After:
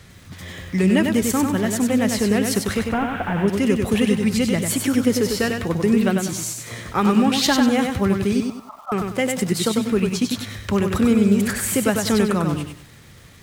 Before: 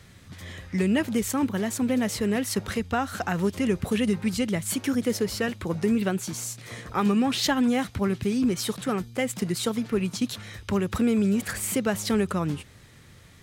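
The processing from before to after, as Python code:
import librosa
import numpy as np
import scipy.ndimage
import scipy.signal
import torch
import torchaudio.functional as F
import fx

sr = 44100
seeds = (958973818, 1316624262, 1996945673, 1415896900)

y = fx.delta_mod(x, sr, bps=16000, step_db=-33.5, at=(2.79, 3.48))
y = fx.brickwall_bandpass(y, sr, low_hz=580.0, high_hz=1400.0, at=(8.4, 8.92))
y = fx.echo_crushed(y, sr, ms=97, feedback_pct=35, bits=9, wet_db=-4.5)
y = y * librosa.db_to_amplitude(5.0)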